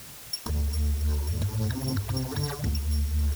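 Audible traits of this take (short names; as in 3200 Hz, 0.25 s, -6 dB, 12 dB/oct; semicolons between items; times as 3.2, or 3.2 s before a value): a buzz of ramps at a fixed pitch in blocks of 8 samples; phasing stages 6, 3.8 Hz, lowest notch 140–2900 Hz; a quantiser's noise floor 8-bit, dither triangular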